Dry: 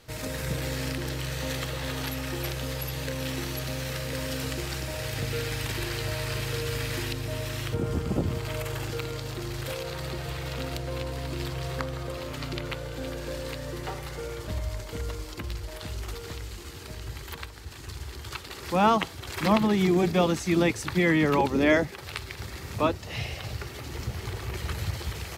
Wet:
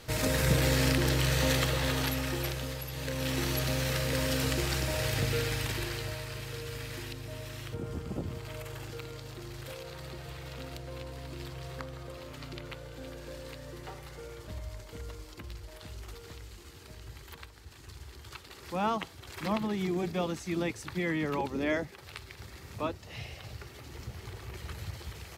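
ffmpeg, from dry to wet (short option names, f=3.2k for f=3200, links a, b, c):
-af "volume=14dB,afade=t=out:st=1.39:d=1.48:silence=0.251189,afade=t=in:st=2.87:d=0.63:silence=0.354813,afade=t=out:st=5.05:d=1.23:silence=0.281838"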